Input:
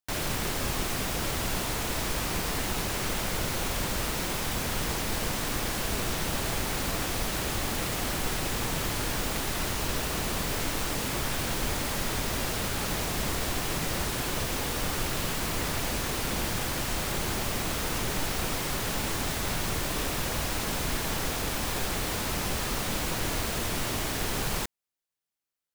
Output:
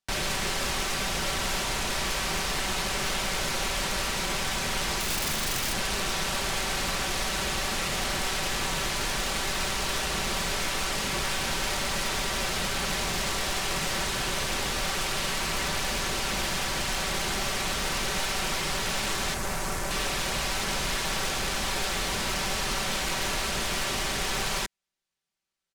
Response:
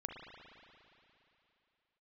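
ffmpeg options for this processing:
-filter_complex "[0:a]aecho=1:1:5.2:0.46,asplit=2[s0][s1];[s1]acrusher=bits=3:mix=0:aa=0.000001,volume=0.282[s2];[s0][s2]amix=inputs=2:normalize=0,adynamicsmooth=sensitivity=2.5:basefreq=7300,asettb=1/sr,asplit=3[s3][s4][s5];[s3]atrim=end=5.004[s6];[s4]atrim=start=5:end=5.74,asetpts=PTS-STARTPTS,afade=t=in:d=0.004:c=qsin,afade=t=out:st=0.736:d=0.004:c=qsin,aeval=exprs='(mod(15.8*val(0)+1,2)-1)/15.8':c=same[s7];[s5]atrim=start=5.736[s8];[s6][s7]acrossfade=d=0.004:c1=hsin:c2=qsin[s9];[s9][s8]acrossfade=d=0.004:c1=qsin:c2=hsin,asettb=1/sr,asplit=3[s10][s11][s12];[s10]atrim=end=19.344[s13];[s11]atrim=start=19.34:end=19.91,asetpts=PTS-STARTPTS,afade=t=in:d=0.004:c=qsin,afade=t=out:st=0.566:d=0.004:c=qsin,equalizer=f=3500:w=0.89:g=-9.5[s14];[s12]atrim=start=19.906[s15];[s13][s14]acrossfade=d=0.004:c1=hsin:c2=qsin[s16];[s16][s15]acrossfade=d=0.004:c1=qsin:c2=hsin,acrossover=split=470[s17][s18];[s17]acompressor=threshold=0.0178:ratio=6[s19];[s19][s18]amix=inputs=2:normalize=0,equalizer=f=600:w=0.3:g=-4.5,asoftclip=type=tanh:threshold=0.0266,volume=2.51"

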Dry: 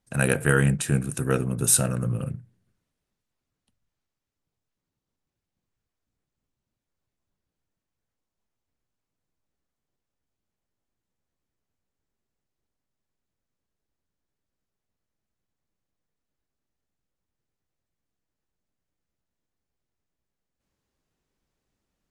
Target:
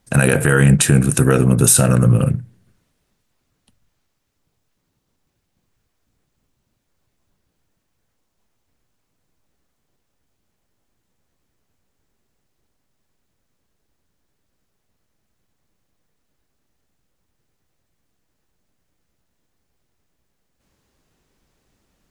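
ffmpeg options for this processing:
-af "alimiter=level_in=5.62:limit=0.891:release=50:level=0:latency=1,volume=0.891"

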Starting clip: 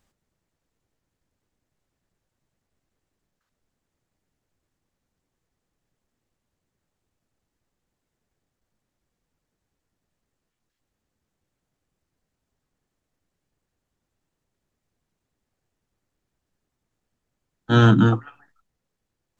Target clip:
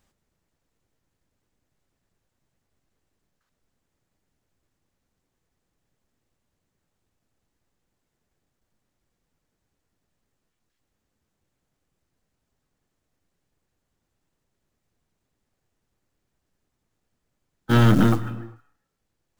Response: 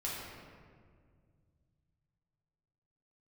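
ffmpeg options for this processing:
-filter_complex "[0:a]acrusher=bits=5:mode=log:mix=0:aa=0.000001,aeval=exprs='(tanh(5.62*val(0)+0.5)-tanh(0.5))/5.62':c=same,asplit=2[s0][s1];[1:a]atrim=start_sample=2205,afade=t=out:st=0.35:d=0.01,atrim=end_sample=15876,adelay=109[s2];[s1][s2]afir=irnorm=-1:irlink=0,volume=0.119[s3];[s0][s3]amix=inputs=2:normalize=0,volume=1.5"

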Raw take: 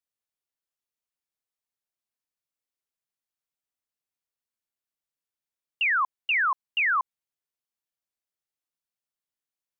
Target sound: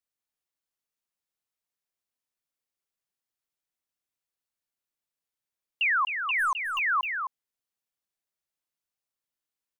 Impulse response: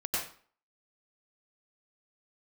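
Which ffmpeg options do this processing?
-filter_complex "[0:a]asplit=3[s0][s1][s2];[s0]afade=t=out:st=6.38:d=0.02[s3];[s1]aeval=exprs='0.1*(cos(1*acos(clip(val(0)/0.1,-1,1)))-cos(1*PI/2))+0.00631*(cos(6*acos(clip(val(0)/0.1,-1,1)))-cos(6*PI/2))+0.00316*(cos(8*acos(clip(val(0)/0.1,-1,1)))-cos(8*PI/2))':c=same,afade=t=in:st=6.38:d=0.02,afade=t=out:st=6.78:d=0.02[s4];[s2]afade=t=in:st=6.78:d=0.02[s5];[s3][s4][s5]amix=inputs=3:normalize=0,asplit=2[s6][s7];[s7]aecho=0:1:260:0.422[s8];[s6][s8]amix=inputs=2:normalize=0,alimiter=limit=0.0891:level=0:latency=1:release=253"

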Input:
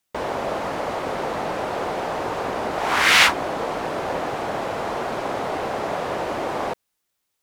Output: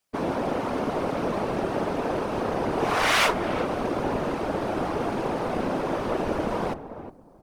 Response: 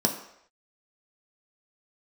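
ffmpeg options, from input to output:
-filter_complex "[0:a]asplit=2[s0][s1];[s1]adelay=361,lowpass=f=800:p=1,volume=0.335,asplit=2[s2][s3];[s3]adelay=361,lowpass=f=800:p=1,volume=0.23,asplit=2[s4][s5];[s5]adelay=361,lowpass=f=800:p=1,volume=0.23[s6];[s0][s2][s4][s6]amix=inputs=4:normalize=0,asplit=2[s7][s8];[1:a]atrim=start_sample=2205,afade=t=out:st=0.27:d=0.01,atrim=end_sample=12348,asetrate=70560,aresample=44100[s9];[s8][s9]afir=irnorm=-1:irlink=0,volume=0.15[s10];[s7][s10]amix=inputs=2:normalize=0,asubboost=boost=8.5:cutoff=52,asoftclip=type=tanh:threshold=0.237,asplit=2[s11][s12];[s12]asetrate=22050,aresample=44100,atempo=2,volume=1[s13];[s11][s13]amix=inputs=2:normalize=0,afftfilt=real='hypot(re,im)*cos(2*PI*random(0))':imag='hypot(re,im)*sin(2*PI*random(1))':win_size=512:overlap=0.75"

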